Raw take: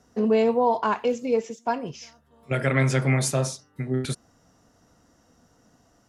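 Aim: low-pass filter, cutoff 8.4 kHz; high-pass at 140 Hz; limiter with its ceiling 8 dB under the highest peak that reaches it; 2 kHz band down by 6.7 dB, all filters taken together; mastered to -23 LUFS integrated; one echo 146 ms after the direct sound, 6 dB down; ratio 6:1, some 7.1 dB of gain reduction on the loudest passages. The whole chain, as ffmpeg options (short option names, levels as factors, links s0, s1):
-af "highpass=140,lowpass=8400,equalizer=f=2000:t=o:g=-8,acompressor=threshold=0.0631:ratio=6,alimiter=limit=0.0708:level=0:latency=1,aecho=1:1:146:0.501,volume=2.99"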